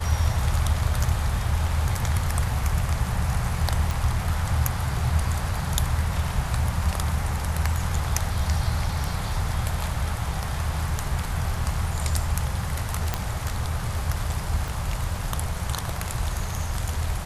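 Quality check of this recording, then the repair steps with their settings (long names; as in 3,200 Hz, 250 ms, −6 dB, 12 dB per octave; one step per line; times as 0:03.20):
0:03.91: click
0:13.14: click −8 dBFS
0:14.68: click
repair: click removal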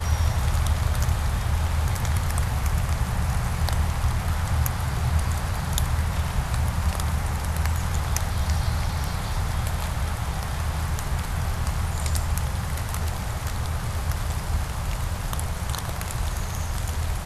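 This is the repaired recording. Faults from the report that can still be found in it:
0:14.68: click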